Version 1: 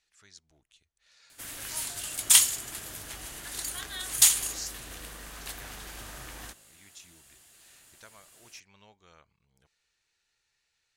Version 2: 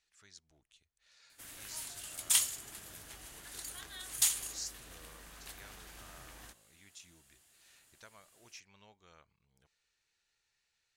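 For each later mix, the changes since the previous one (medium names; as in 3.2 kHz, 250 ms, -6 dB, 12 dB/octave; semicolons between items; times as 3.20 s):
speech -3.5 dB; background -9.5 dB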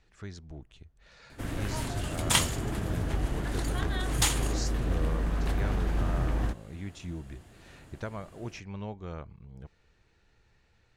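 master: remove pre-emphasis filter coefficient 0.97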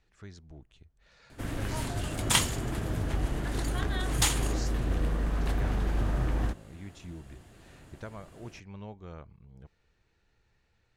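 speech -5.0 dB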